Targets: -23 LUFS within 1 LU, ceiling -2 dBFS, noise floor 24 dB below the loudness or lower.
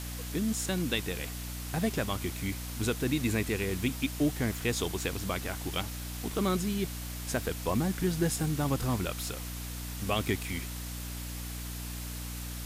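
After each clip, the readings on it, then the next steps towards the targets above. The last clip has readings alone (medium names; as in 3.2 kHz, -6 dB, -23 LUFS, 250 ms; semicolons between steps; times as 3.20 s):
hum 60 Hz; highest harmonic 300 Hz; hum level -37 dBFS; noise floor -39 dBFS; noise floor target -57 dBFS; loudness -32.5 LUFS; peak level -16.0 dBFS; loudness target -23.0 LUFS
-> hum notches 60/120/180/240/300 Hz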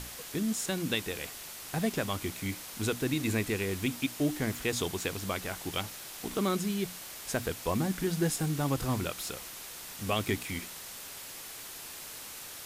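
hum not found; noise floor -44 dBFS; noise floor target -58 dBFS
-> noise reduction 14 dB, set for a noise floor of -44 dBFS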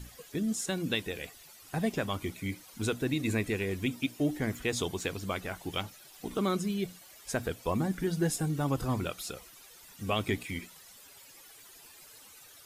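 noise floor -54 dBFS; noise floor target -57 dBFS
-> noise reduction 6 dB, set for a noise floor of -54 dBFS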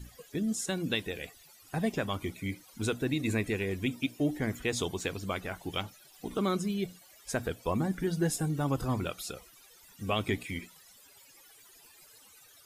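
noise floor -58 dBFS; loudness -33.0 LUFS; peak level -17.0 dBFS; loudness target -23.0 LUFS
-> trim +10 dB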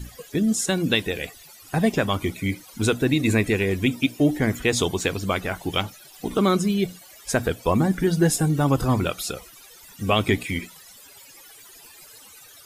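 loudness -23.0 LUFS; peak level -7.0 dBFS; noise floor -48 dBFS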